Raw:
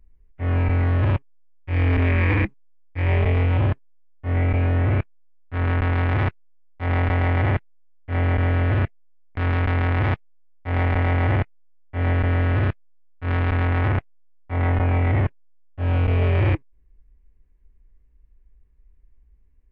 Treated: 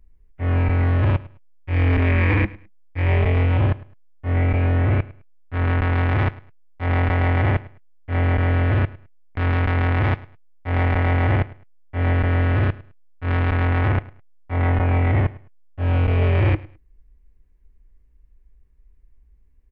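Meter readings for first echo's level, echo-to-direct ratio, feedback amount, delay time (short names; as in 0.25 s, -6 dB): -20.0 dB, -20.0 dB, 24%, 0.105 s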